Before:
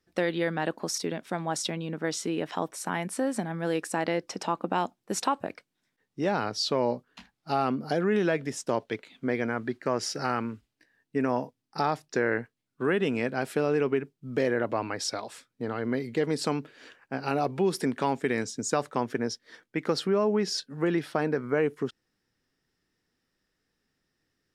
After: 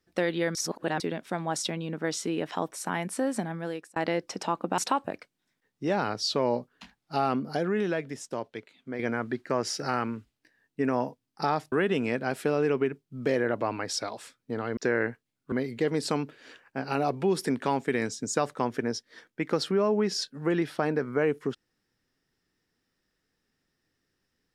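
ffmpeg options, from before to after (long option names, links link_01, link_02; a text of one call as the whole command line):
ffmpeg -i in.wav -filter_complex "[0:a]asplit=9[link_01][link_02][link_03][link_04][link_05][link_06][link_07][link_08][link_09];[link_01]atrim=end=0.552[link_10];[link_02]atrim=start=0.548:end=1.002,asetpts=PTS-STARTPTS,areverse[link_11];[link_03]atrim=start=0.998:end=3.96,asetpts=PTS-STARTPTS,afade=type=out:start_time=2.462:duration=0.5[link_12];[link_04]atrim=start=3.96:end=4.782,asetpts=PTS-STARTPTS,afade=type=in:duration=0.004:curve=hsin[link_13];[link_05]atrim=start=5.138:end=9.35,asetpts=PTS-STARTPTS,afade=type=out:start_time=2.582:duration=1.63:curve=qua:silence=0.421697[link_14];[link_06]atrim=start=9.35:end=12.082,asetpts=PTS-STARTPTS,afade=type=in:duration=0.004:curve=hsin:silence=0.421697[link_15];[link_07]atrim=start=12.828:end=15.882[link_16];[link_08]atrim=start=12.078:end=12.832[link_17];[link_09]atrim=start=15.878[link_18];[link_10][link_11]acrossfade=duration=0.004:curve1=hsin:curve2=hsin[link_19];[link_12][link_13]concat=n=2:v=0:a=1[link_20];[link_19][link_20]acrossfade=duration=0.004:curve1=hsin:curve2=hsin[link_21];[link_14][link_15]concat=n=2:v=0:a=1[link_22];[link_21][link_22]acrossfade=duration=0.004:curve1=hsin:curve2=hsin[link_23];[link_23][link_16]acrossfade=duration=0.004:curve1=hsin:curve2=hsin[link_24];[link_24][link_17]acrossfade=duration=0.004:curve1=hsin:curve2=hsin[link_25];[link_25][link_18]acrossfade=duration=0.004:curve1=hsin:curve2=hsin" out.wav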